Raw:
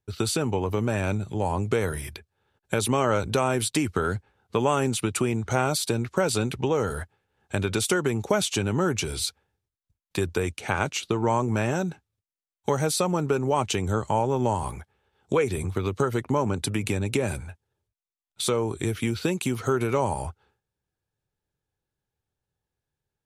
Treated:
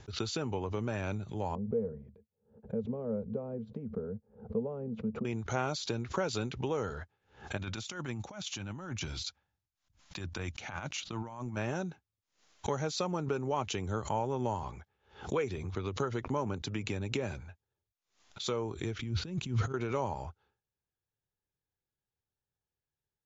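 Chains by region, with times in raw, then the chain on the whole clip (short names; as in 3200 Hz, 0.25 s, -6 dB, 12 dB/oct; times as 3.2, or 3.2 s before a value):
1.55–5.25 double band-pass 320 Hz, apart 1.1 oct + tilt -4 dB/oct
7.57–11.57 bell 420 Hz -13.5 dB 0.4 oct + negative-ratio compressor -29 dBFS, ratio -0.5
18.99–19.74 G.711 law mismatch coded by mu + negative-ratio compressor -35 dBFS + tone controls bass +15 dB, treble -1 dB
whole clip: Chebyshev low-pass 7200 Hz, order 10; backwards sustainer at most 140 dB/s; gain -8.5 dB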